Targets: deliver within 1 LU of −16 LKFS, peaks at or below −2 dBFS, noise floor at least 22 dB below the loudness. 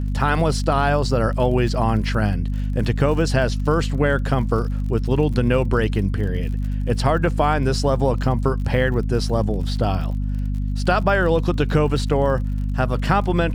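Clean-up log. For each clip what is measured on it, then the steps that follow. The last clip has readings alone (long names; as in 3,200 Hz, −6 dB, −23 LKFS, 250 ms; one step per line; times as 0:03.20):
crackle rate 48 per second; mains hum 50 Hz; hum harmonics up to 250 Hz; level of the hum −20 dBFS; integrated loudness −21.0 LKFS; sample peak −5.0 dBFS; target loudness −16.0 LKFS
→ click removal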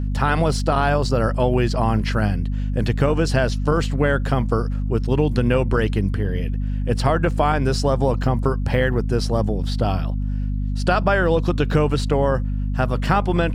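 crackle rate 0.66 per second; mains hum 50 Hz; hum harmonics up to 250 Hz; level of the hum −20 dBFS
→ mains-hum notches 50/100/150/200/250 Hz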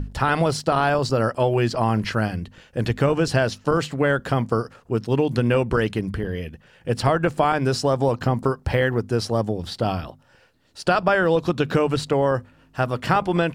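mains hum none found; integrated loudness −22.5 LKFS; sample peak −6.0 dBFS; target loudness −16.0 LKFS
→ level +6.5 dB
brickwall limiter −2 dBFS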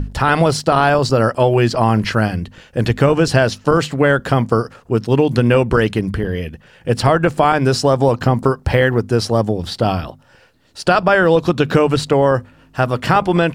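integrated loudness −16.0 LKFS; sample peak −2.0 dBFS; background noise floor −49 dBFS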